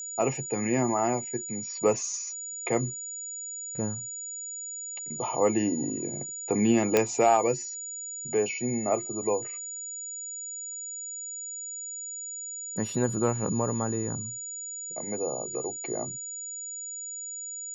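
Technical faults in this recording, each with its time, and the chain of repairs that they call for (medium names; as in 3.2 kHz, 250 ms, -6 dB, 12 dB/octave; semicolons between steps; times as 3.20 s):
whine 6.9 kHz -35 dBFS
6.97 s: pop -7 dBFS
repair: de-click; band-stop 6.9 kHz, Q 30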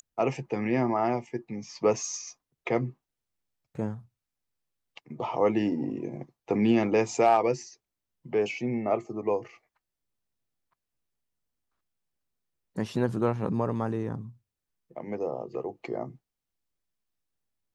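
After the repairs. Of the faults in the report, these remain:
nothing left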